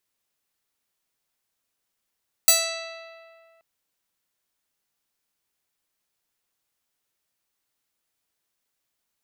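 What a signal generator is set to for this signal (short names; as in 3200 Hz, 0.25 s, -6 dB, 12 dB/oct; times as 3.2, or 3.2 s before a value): plucked string E5, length 1.13 s, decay 2.19 s, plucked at 0.38, bright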